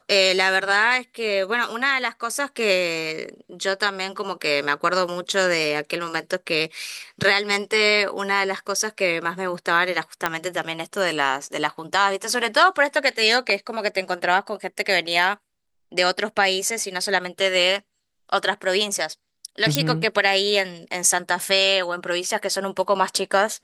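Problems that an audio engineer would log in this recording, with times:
0:10.26: click −6 dBFS
0:19.75: click −2 dBFS

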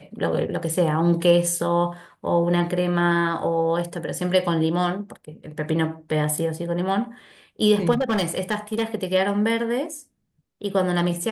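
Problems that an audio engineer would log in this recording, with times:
0:07.91–0:08.84: clipping −18 dBFS

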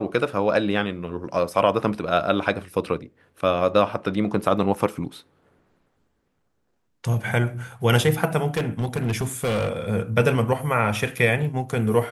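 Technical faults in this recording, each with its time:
0:08.57–0:09.73: clipping −19.5 dBFS

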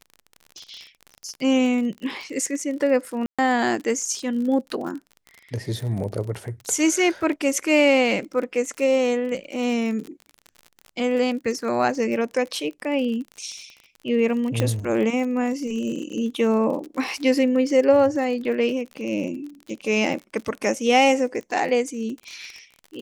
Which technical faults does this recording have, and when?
surface crackle 40 per second −31 dBFS
0:03.26–0:03.39: drop-out 126 ms
0:14.60: click −9 dBFS

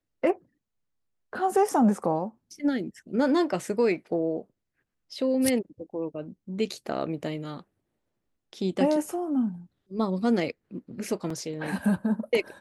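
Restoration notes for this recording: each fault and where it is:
0:11.30: drop-out 3.7 ms

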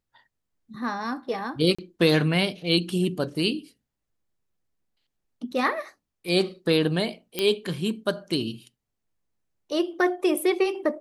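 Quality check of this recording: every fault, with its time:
0:01.75–0:01.78: drop-out 35 ms
0:07.39: click −10 dBFS

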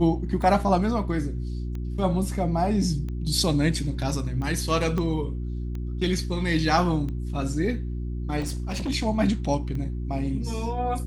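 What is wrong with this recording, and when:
mains hum 60 Hz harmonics 6 −30 dBFS
scratch tick 45 rpm
0:04.98: click −17 dBFS
0:08.39–0:08.90: clipping −25.5 dBFS

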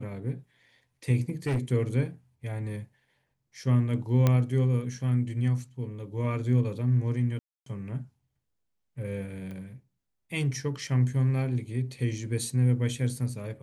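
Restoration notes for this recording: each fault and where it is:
0:01.29–0:01.59: clipping −23.5 dBFS
0:04.27: click −11 dBFS
0:07.39–0:07.66: drop-out 273 ms
0:09.51: click −30 dBFS

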